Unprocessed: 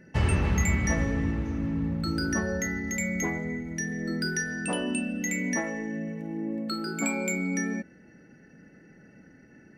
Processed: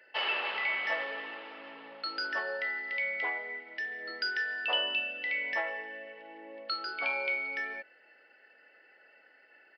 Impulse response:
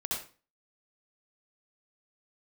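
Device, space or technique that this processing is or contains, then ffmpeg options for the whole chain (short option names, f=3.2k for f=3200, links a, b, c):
musical greeting card: -af "aresample=11025,aresample=44100,highpass=f=570:w=0.5412,highpass=f=570:w=1.3066,equalizer=f=3k:t=o:w=0.38:g=10.5"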